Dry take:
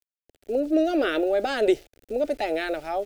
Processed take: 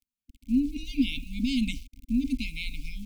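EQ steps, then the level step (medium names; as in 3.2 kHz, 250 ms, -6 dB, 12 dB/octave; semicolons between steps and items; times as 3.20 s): brick-wall FIR band-stop 270–2100 Hz; tilt shelf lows +9 dB; static phaser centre 320 Hz, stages 4; +8.5 dB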